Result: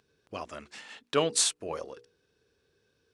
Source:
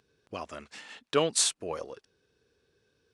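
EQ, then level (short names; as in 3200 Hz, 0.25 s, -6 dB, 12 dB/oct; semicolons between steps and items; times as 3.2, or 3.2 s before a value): notches 60/120/180/240/300/360/420/480 Hz; 0.0 dB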